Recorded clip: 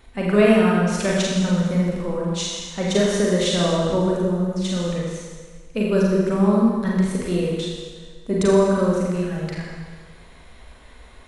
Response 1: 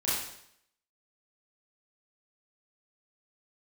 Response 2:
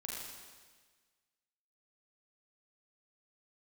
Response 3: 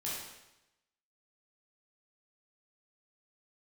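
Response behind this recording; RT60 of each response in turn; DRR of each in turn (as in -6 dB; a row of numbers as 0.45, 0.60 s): 2; 0.70, 1.5, 0.95 s; -10.0, -4.5, -7.5 dB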